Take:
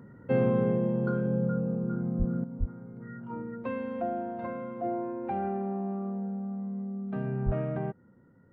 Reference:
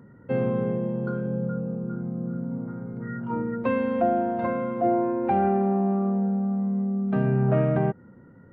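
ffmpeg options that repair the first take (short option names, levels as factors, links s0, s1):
-filter_complex "[0:a]asplit=3[s0][s1][s2];[s0]afade=t=out:st=2.18:d=0.02[s3];[s1]highpass=f=140:w=0.5412,highpass=f=140:w=1.3066,afade=t=in:st=2.18:d=0.02,afade=t=out:st=2.3:d=0.02[s4];[s2]afade=t=in:st=2.3:d=0.02[s5];[s3][s4][s5]amix=inputs=3:normalize=0,asplit=3[s6][s7][s8];[s6]afade=t=out:st=2.59:d=0.02[s9];[s7]highpass=f=140:w=0.5412,highpass=f=140:w=1.3066,afade=t=in:st=2.59:d=0.02,afade=t=out:st=2.71:d=0.02[s10];[s8]afade=t=in:st=2.71:d=0.02[s11];[s9][s10][s11]amix=inputs=3:normalize=0,asplit=3[s12][s13][s14];[s12]afade=t=out:st=7.45:d=0.02[s15];[s13]highpass=f=140:w=0.5412,highpass=f=140:w=1.3066,afade=t=in:st=7.45:d=0.02,afade=t=out:st=7.57:d=0.02[s16];[s14]afade=t=in:st=7.57:d=0.02[s17];[s15][s16][s17]amix=inputs=3:normalize=0,asetnsamples=n=441:p=0,asendcmd='2.44 volume volume 9.5dB',volume=1"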